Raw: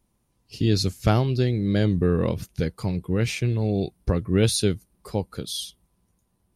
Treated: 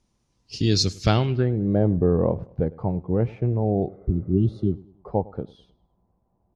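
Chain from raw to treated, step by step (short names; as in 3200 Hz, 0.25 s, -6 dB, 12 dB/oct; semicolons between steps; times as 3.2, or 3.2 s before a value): spectral repair 3.91–4.71, 400–2700 Hz after; low-pass sweep 5900 Hz -> 780 Hz, 1.01–1.57; feedback echo 0.103 s, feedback 40%, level -21.5 dB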